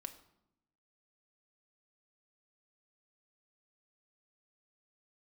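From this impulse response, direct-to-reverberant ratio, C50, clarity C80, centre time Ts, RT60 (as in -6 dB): 6.5 dB, 13.0 dB, 15.5 dB, 7 ms, 0.80 s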